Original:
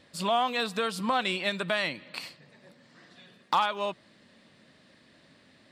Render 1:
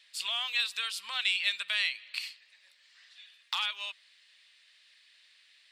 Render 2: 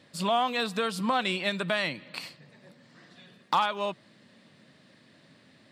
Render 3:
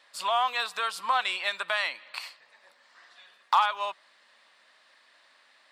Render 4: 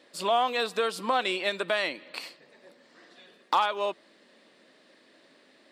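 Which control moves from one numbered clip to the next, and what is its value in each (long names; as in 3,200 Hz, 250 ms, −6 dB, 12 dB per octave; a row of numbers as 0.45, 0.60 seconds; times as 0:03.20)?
high-pass with resonance, frequency: 2,600, 120, 970, 360 Hertz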